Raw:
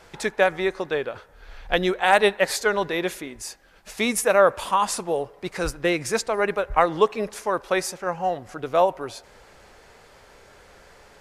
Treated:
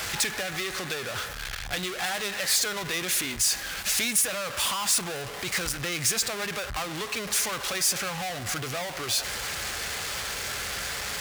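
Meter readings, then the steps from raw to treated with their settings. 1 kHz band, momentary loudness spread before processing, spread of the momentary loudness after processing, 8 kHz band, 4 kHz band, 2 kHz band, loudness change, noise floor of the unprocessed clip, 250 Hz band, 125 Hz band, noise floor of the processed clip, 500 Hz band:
-10.5 dB, 16 LU, 8 LU, +8.0 dB, +5.0 dB, -3.0 dB, -4.0 dB, -52 dBFS, -8.5 dB, -1.0 dB, -37 dBFS, -14.0 dB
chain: power-law waveshaper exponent 0.35; compression, threshold -14 dBFS, peak gain reduction 7 dB; high-pass 54 Hz; amplifier tone stack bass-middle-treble 5-5-5; band-stop 930 Hz, Q 14

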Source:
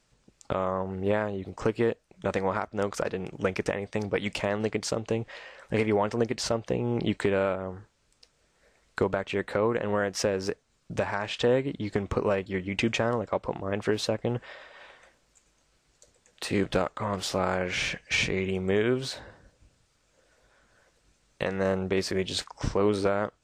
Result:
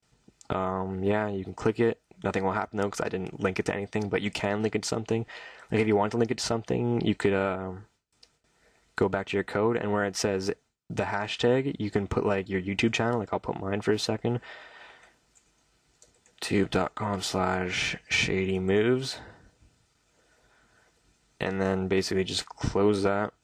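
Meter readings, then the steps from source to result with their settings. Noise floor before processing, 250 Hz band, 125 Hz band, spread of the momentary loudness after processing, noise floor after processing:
-69 dBFS, +2.0 dB, +1.5 dB, 8 LU, -69 dBFS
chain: gate with hold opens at -58 dBFS; comb of notches 550 Hz; trim +2 dB

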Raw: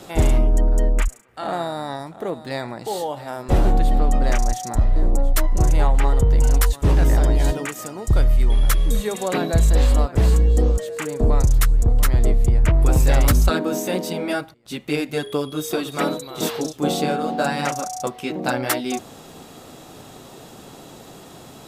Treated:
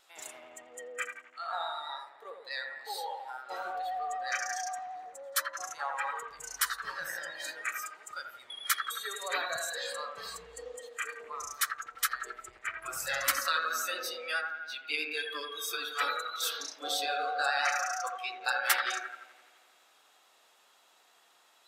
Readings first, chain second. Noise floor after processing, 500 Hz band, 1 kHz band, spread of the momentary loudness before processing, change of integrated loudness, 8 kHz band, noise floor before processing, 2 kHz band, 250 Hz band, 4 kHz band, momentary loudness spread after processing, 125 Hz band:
-64 dBFS, -17.5 dB, -7.0 dB, 11 LU, -13.0 dB, -6.0 dB, -43 dBFS, -1.5 dB, -32.5 dB, -3.5 dB, 14 LU, under -40 dB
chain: high-pass 1.4 kHz 12 dB/octave; on a send: feedback echo behind a low-pass 85 ms, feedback 75%, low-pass 2.6 kHz, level -3 dB; on the sum: vibrato 9.2 Hz 33 cents; treble shelf 4.5 kHz -6 dB; spectral noise reduction 15 dB

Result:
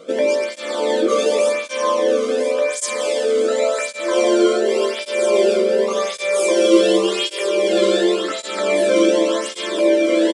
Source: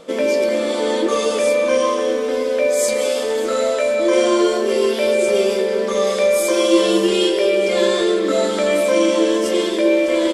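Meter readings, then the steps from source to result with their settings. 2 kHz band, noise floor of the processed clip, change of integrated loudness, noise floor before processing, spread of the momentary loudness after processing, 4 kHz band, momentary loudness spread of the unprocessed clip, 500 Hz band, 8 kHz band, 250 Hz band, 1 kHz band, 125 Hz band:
-0.5 dB, -31 dBFS, -0.5 dB, -21 dBFS, 6 LU, -0.5 dB, 4 LU, -0.5 dB, -0.5 dB, -0.5 dB, -0.5 dB, no reading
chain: delay 999 ms -8.5 dB; resampled via 22.05 kHz; cancelling through-zero flanger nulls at 0.89 Hz, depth 1.2 ms; trim +2 dB

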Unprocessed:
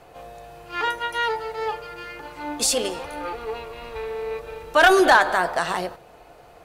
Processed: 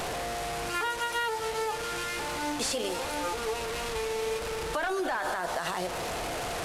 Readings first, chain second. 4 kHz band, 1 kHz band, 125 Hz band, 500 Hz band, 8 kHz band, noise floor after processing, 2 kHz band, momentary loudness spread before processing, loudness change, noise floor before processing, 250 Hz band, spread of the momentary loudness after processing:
-5.5 dB, -8.5 dB, +0.5 dB, -7.5 dB, -6.0 dB, -35 dBFS, -10.5 dB, 19 LU, -9.5 dB, -49 dBFS, -7.5 dB, 4 LU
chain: one-bit delta coder 64 kbps, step -27.5 dBFS; peak limiter -18 dBFS, peak gain reduction 11 dB; compression, threshold -27 dBFS, peak gain reduction 6 dB

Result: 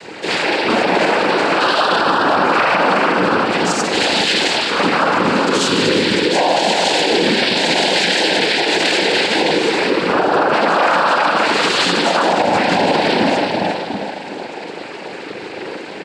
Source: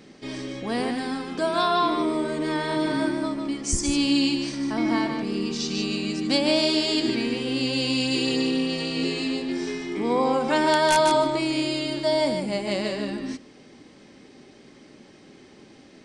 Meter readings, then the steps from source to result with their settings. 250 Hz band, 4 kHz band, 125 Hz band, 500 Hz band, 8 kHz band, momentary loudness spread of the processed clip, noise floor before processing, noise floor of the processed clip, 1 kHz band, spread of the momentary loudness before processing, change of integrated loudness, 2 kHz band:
+4.5 dB, +11.0 dB, +7.0 dB, +9.5 dB, +7.5 dB, 13 LU, -51 dBFS, -30 dBFS, +12.5 dB, 9 LU, +9.5 dB, +15.0 dB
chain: low-pass 4.3 kHz 12 dB/octave; reverse; compression, threshold -29 dBFS, peak gain reduction 12.5 dB; reverse; comb 5.4 ms, depth 93%; on a send: filtered feedback delay 371 ms, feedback 46%, low-pass 2.6 kHz, level -4.5 dB; on the sum: reverb removal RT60 0.69 s; high-pass 420 Hz 12 dB/octave; spring tank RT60 1.8 s, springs 39 ms, chirp 40 ms, DRR -6.5 dB; noise-vocoded speech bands 8; loudness maximiser +21.5 dB; trim -4.5 dB

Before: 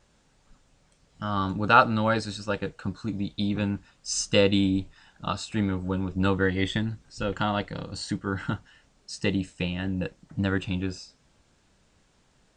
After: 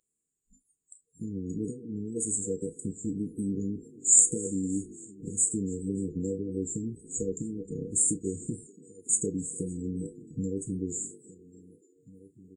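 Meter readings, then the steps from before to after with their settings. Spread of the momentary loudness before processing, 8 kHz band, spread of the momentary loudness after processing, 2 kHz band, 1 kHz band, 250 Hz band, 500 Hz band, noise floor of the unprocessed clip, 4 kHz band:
13 LU, +13.5 dB, 13 LU, under -40 dB, under -40 dB, -4.5 dB, -7.0 dB, -65 dBFS, under -40 dB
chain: compression 10:1, threshold -28 dBFS, peak gain reduction 16.5 dB; on a send: frequency-shifting echo 287 ms, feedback 58%, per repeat +49 Hz, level -22 dB; on the sum: vibrato 1.9 Hz 83 cents; FFT band-reject 490–6700 Hz; RIAA curve recording; echo from a far wall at 290 m, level -20 dB; spectral noise reduction 28 dB; doubling 31 ms -13.5 dB; trim +8.5 dB

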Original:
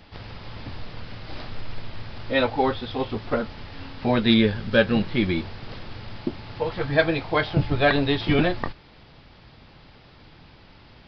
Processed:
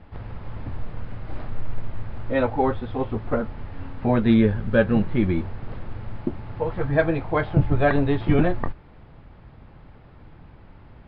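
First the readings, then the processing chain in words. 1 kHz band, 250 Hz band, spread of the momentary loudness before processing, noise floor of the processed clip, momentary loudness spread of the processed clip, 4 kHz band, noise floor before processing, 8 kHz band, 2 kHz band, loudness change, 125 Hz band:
-0.5 dB, +1.5 dB, 19 LU, -48 dBFS, 17 LU, -14.0 dB, -51 dBFS, no reading, -4.0 dB, +0.5 dB, +3.5 dB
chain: low-pass 1.6 kHz 12 dB/octave; bass shelf 120 Hz +7.5 dB

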